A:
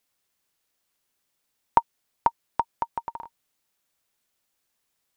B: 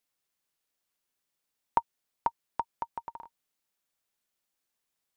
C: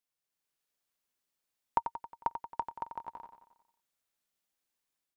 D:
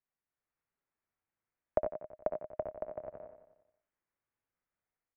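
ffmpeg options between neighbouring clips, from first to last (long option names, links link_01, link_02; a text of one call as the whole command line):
ffmpeg -i in.wav -af "equalizer=frequency=88:width=3.8:gain=-7.5,volume=-7dB" out.wav
ffmpeg -i in.wav -filter_complex "[0:a]dynaudnorm=framelen=150:gausssize=5:maxgain=5dB,asplit=2[link_01][link_02];[link_02]aecho=0:1:90|180|270|360|450|540:0.355|0.195|0.107|0.059|0.0325|0.0179[link_03];[link_01][link_03]amix=inputs=2:normalize=0,volume=-8dB" out.wav
ffmpeg -i in.wav -af "highpass=frequency=160:width_type=q:width=0.5412,highpass=frequency=160:width_type=q:width=1.307,lowpass=frequency=2500:width_type=q:width=0.5176,lowpass=frequency=2500:width_type=q:width=0.7071,lowpass=frequency=2500:width_type=q:width=1.932,afreqshift=-310,aecho=1:1:60|72:0.316|0.376,volume=-1dB" out.wav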